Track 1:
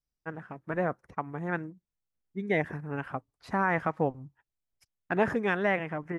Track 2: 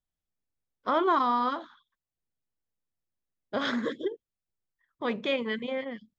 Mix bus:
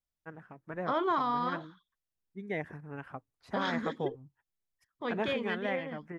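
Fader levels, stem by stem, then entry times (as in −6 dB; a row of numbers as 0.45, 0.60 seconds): −8.0, −5.0 decibels; 0.00, 0.00 seconds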